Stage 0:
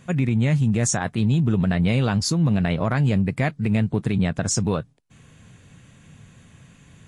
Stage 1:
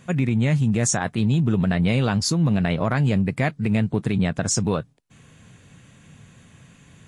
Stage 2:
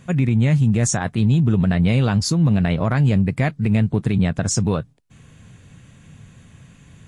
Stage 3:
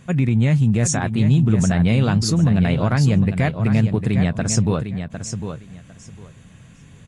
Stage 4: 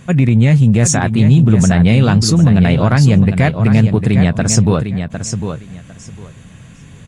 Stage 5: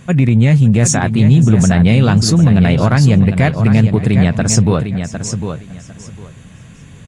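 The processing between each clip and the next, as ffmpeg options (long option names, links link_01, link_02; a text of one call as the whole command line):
ffmpeg -i in.wav -af "lowshelf=frequency=84:gain=-5.5,volume=1dB" out.wav
ffmpeg -i in.wav -af "lowshelf=frequency=120:gain=9.5" out.wav
ffmpeg -i in.wav -af "aecho=1:1:754|1508|2262:0.376|0.0677|0.0122" out.wav
ffmpeg -i in.wav -af "acontrast=32,volume=2dB" out.wav
ffmpeg -i in.wav -af "aecho=1:1:559:0.1" out.wav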